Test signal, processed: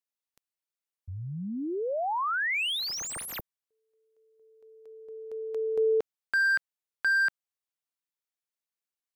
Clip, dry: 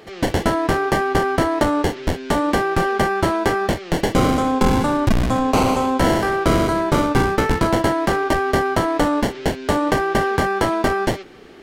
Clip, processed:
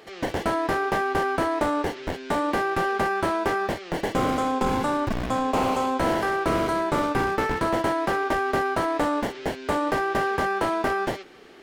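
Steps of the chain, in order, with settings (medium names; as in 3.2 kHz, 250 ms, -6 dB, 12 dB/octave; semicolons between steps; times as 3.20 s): bass shelf 250 Hz -10 dB; slew-rate limiter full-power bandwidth 160 Hz; trim -3 dB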